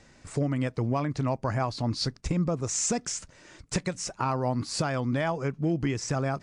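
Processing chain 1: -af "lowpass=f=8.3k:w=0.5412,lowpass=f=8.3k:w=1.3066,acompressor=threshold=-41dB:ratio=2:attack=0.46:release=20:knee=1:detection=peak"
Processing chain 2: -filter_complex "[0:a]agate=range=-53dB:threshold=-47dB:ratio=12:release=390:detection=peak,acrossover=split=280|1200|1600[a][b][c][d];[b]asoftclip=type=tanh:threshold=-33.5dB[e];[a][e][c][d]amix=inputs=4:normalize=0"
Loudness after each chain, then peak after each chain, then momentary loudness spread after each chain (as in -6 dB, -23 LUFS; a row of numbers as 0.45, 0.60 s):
-38.5, -30.5 LUFS; -26.5, -16.5 dBFS; 5, 5 LU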